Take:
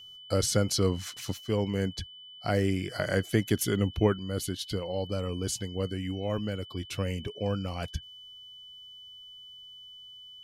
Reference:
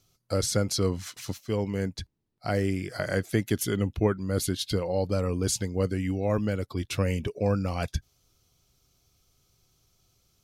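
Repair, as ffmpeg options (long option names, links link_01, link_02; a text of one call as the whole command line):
ffmpeg -i in.wav -af "bandreject=frequency=3000:width=30,asetnsamples=nb_out_samples=441:pad=0,asendcmd='4.19 volume volume 5dB',volume=0dB" out.wav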